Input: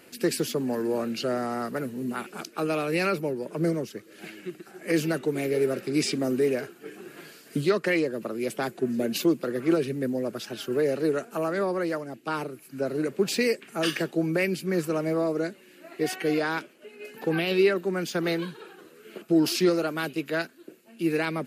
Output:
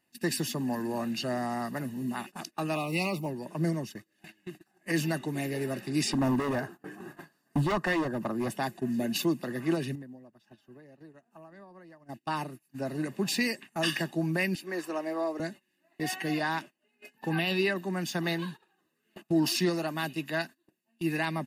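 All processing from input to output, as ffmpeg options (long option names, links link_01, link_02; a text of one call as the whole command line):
ffmpeg -i in.wav -filter_complex "[0:a]asettb=1/sr,asplit=3[link_01][link_02][link_03];[link_01]atrim=end=2.764[link_04];[link_02]atrim=start=2.76:end=3.26,asetpts=PTS-STARTPTS,afade=type=in:duration=0.004:curve=qsin,afade=type=out:start_time=0.496:duration=0.004:curve=qsin,acrusher=bits=9:mode=log:mix=0:aa=0.000001,asuperstop=centerf=1600:order=20:qfactor=2.3[link_05];[link_03]atrim=start=3.256[link_06];[link_04][link_05]acrossfade=duration=0.004:curve1=hsin:curve2=qsin[link_07];[link_07][link_06]acrossfade=duration=0.004:curve1=qsin:curve2=hsin,asettb=1/sr,asplit=3[link_08][link_09][link_10];[link_08]atrim=end=6.104[link_11];[link_09]atrim=start=6.1:end=8.52,asetpts=PTS-STARTPTS,afade=type=in:duration=0.004:curve=qsin,afade=type=out:start_time=2.416:duration=0.004:curve=qsin,highshelf=frequency=1800:width_type=q:width=1.5:gain=-8,acontrast=21,volume=20dB,asoftclip=hard,volume=-20dB[link_12];[link_10]atrim=start=8.516[link_13];[link_11][link_12]acrossfade=duration=0.004:curve1=hsin:curve2=qsin[link_14];[link_14][link_13]acrossfade=duration=0.004:curve1=qsin:curve2=hsin,asettb=1/sr,asplit=3[link_15][link_16][link_17];[link_15]atrim=end=9.954[link_18];[link_16]atrim=start=9.95:end=12.09,asetpts=PTS-STARTPTS,afade=type=in:duration=0.004:curve=qsin,afade=type=out:start_time=2.136:duration=0.004:curve=qsin,acompressor=threshold=-36dB:ratio=20:attack=3.2:release=140:knee=1:detection=peak,highshelf=frequency=2800:gain=-9[link_19];[link_17]atrim=start=12.086[link_20];[link_18][link_19]acrossfade=duration=0.004:curve1=hsin:curve2=qsin[link_21];[link_21][link_20]acrossfade=duration=0.004:curve1=qsin:curve2=hsin,asettb=1/sr,asplit=3[link_22][link_23][link_24];[link_22]atrim=end=14.554[link_25];[link_23]atrim=start=14.55:end=15.4,asetpts=PTS-STARTPTS,afade=type=in:duration=0.004:curve=qsin,afade=type=out:start_time=0.846:duration=0.004:curve=qsin,highpass=frequency=300:width=0.5412,highpass=frequency=300:width=1.3066,highshelf=frequency=5300:gain=-7[link_26];[link_24]atrim=start=15.396[link_27];[link_25][link_26]acrossfade=duration=0.004:curve1=hsin:curve2=qsin[link_28];[link_28][link_27]acrossfade=duration=0.004:curve1=qsin:curve2=hsin,agate=range=-21dB:threshold=-39dB:ratio=16:detection=peak,aecho=1:1:1.1:0.72,volume=-3dB" out.wav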